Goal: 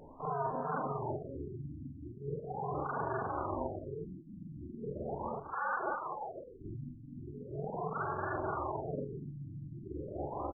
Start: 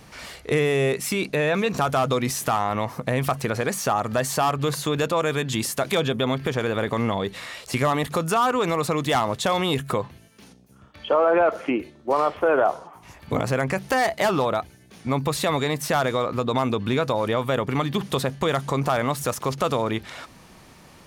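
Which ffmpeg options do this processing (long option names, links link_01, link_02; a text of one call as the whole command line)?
ffmpeg -i in.wav -filter_complex "[0:a]afftfilt=real='re':imag='-im':win_size=8192:overlap=0.75,asetrate=88200,aresample=44100,aeval=exprs='val(0)*sin(2*PI*140*n/s)':channel_layout=same,acrossover=split=2200[link_01][link_02];[link_02]alimiter=level_in=2.5dB:limit=-24dB:level=0:latency=1:release=175,volume=-2.5dB[link_03];[link_01][link_03]amix=inputs=2:normalize=0,aecho=1:1:250|500:0.376|0.282,areverse,acompressor=threshold=-39dB:ratio=12,areverse,afftfilt=real='re*lt(b*sr/1024,310*pow(1800/310,0.5+0.5*sin(2*PI*0.39*pts/sr)))':imag='im*lt(b*sr/1024,310*pow(1800/310,0.5+0.5*sin(2*PI*0.39*pts/sr)))':win_size=1024:overlap=0.75,volume=8dB" out.wav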